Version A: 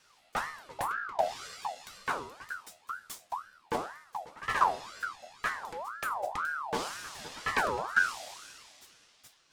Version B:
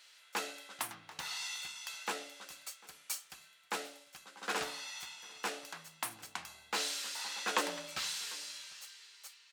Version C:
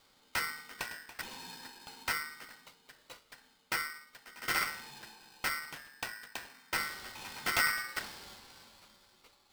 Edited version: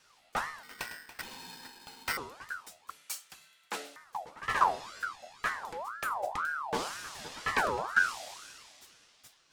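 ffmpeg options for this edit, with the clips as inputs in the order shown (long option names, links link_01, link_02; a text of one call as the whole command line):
ffmpeg -i take0.wav -i take1.wav -i take2.wav -filter_complex "[0:a]asplit=3[link_01][link_02][link_03];[link_01]atrim=end=0.632[link_04];[2:a]atrim=start=0.628:end=2.172[link_05];[link_02]atrim=start=2.168:end=2.902[link_06];[1:a]atrim=start=2.898:end=3.962[link_07];[link_03]atrim=start=3.958[link_08];[link_04][link_05]acrossfade=duration=0.004:curve1=hsin:curve2=hsin[link_09];[link_09][link_06]acrossfade=duration=0.004:curve1=hsin:curve2=hsin[link_10];[link_10][link_07]acrossfade=duration=0.004:curve1=hsin:curve2=hsin[link_11];[link_11][link_08]acrossfade=duration=0.004:curve1=hsin:curve2=hsin" out.wav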